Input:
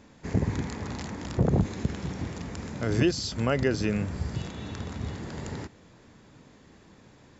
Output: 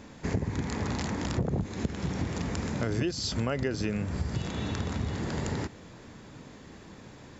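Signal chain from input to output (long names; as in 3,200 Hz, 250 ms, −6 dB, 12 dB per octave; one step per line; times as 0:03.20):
downward compressor 5 to 1, threshold −33 dBFS, peak gain reduction 14 dB
level +6 dB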